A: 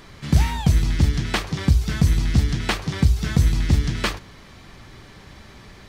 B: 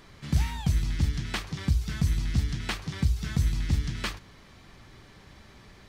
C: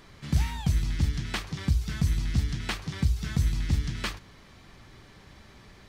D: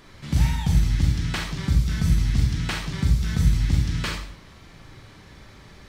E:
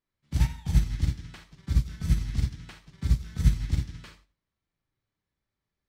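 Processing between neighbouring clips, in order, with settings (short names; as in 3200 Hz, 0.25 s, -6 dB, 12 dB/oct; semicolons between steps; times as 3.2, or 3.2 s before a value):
dynamic EQ 510 Hz, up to -6 dB, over -36 dBFS, Q 0.76; gain -7.5 dB
nothing audible
reverb RT60 0.55 s, pre-delay 33 ms, DRR 1 dB; gain +2 dB
upward expander 2.5:1, over -40 dBFS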